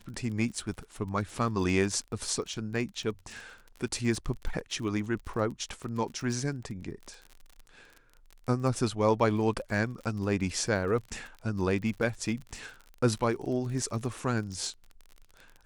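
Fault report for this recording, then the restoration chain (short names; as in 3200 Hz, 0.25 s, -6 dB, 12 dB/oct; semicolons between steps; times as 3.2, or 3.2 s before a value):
crackle 39/s -38 dBFS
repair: de-click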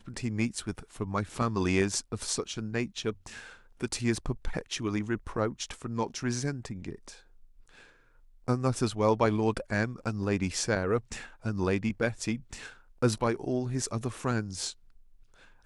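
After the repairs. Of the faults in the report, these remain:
none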